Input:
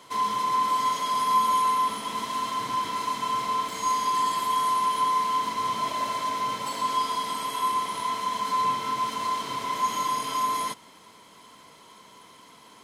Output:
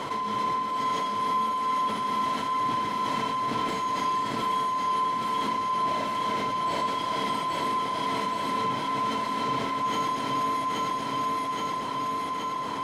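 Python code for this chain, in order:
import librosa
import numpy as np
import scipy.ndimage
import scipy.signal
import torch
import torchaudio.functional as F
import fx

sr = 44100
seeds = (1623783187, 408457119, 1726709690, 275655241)

p1 = x * (1.0 - 0.75 / 2.0 + 0.75 / 2.0 * np.cos(2.0 * np.pi * 2.2 * (np.arange(len(x)) / sr)))
p2 = p1 + fx.echo_feedback(p1, sr, ms=824, feedback_pct=54, wet_db=-3.5, dry=0)
p3 = fx.dynamic_eq(p2, sr, hz=1100.0, q=3.1, threshold_db=-42.0, ratio=4.0, max_db=-6)
p4 = fx.lowpass(p3, sr, hz=1500.0, slope=6)
y = fx.env_flatten(p4, sr, amount_pct=70)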